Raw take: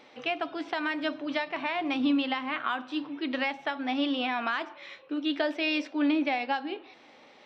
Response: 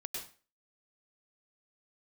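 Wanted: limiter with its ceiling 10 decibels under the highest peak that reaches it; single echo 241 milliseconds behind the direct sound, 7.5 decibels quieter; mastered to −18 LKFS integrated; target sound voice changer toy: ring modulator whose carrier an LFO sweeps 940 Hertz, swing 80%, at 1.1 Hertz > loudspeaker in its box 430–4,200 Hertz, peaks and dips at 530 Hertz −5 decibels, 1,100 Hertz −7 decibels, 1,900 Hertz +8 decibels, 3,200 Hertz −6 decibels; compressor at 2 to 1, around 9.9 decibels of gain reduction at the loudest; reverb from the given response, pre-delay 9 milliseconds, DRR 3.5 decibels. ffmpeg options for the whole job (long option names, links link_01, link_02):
-filter_complex "[0:a]acompressor=threshold=-41dB:ratio=2,alimiter=level_in=8.5dB:limit=-24dB:level=0:latency=1,volume=-8.5dB,aecho=1:1:241:0.422,asplit=2[link_01][link_02];[1:a]atrim=start_sample=2205,adelay=9[link_03];[link_02][link_03]afir=irnorm=-1:irlink=0,volume=-3dB[link_04];[link_01][link_04]amix=inputs=2:normalize=0,aeval=exprs='val(0)*sin(2*PI*940*n/s+940*0.8/1.1*sin(2*PI*1.1*n/s))':channel_layout=same,highpass=430,equalizer=frequency=530:width_type=q:width=4:gain=-5,equalizer=frequency=1100:width_type=q:width=4:gain=-7,equalizer=frequency=1900:width_type=q:width=4:gain=8,equalizer=frequency=3200:width_type=q:width=4:gain=-6,lowpass=frequency=4200:width=0.5412,lowpass=frequency=4200:width=1.3066,volume=24.5dB"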